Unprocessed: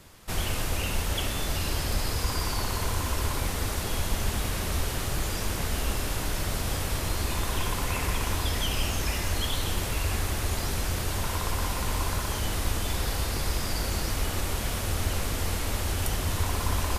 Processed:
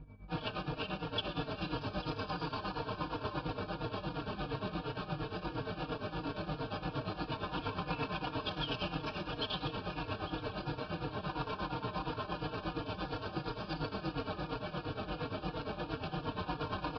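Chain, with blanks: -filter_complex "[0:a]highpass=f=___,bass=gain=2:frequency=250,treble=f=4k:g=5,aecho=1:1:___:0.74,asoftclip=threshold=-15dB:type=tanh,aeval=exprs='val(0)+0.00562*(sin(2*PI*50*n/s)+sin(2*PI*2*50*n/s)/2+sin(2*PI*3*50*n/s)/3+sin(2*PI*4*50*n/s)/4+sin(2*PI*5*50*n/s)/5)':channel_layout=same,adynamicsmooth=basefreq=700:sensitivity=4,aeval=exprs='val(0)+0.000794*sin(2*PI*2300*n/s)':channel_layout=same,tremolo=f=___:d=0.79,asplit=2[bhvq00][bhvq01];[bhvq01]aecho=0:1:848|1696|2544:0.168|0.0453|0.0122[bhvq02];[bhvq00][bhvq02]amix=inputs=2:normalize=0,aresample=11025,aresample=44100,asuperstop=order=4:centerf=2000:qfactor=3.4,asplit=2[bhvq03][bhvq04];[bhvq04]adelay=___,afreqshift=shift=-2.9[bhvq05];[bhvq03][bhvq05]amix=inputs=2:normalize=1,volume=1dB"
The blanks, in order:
150, 6.5, 8.6, 3.7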